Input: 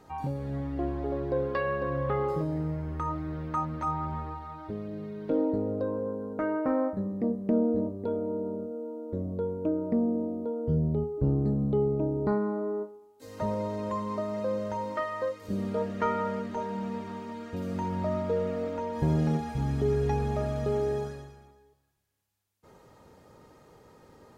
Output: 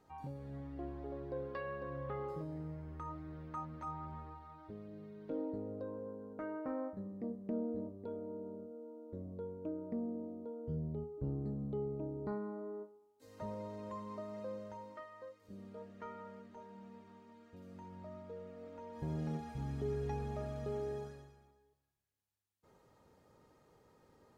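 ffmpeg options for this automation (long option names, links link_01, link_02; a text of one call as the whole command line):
ffmpeg -i in.wav -af "volume=-4.5dB,afade=type=out:start_time=14.42:duration=0.67:silence=0.446684,afade=type=in:start_time=18.55:duration=0.9:silence=0.375837" out.wav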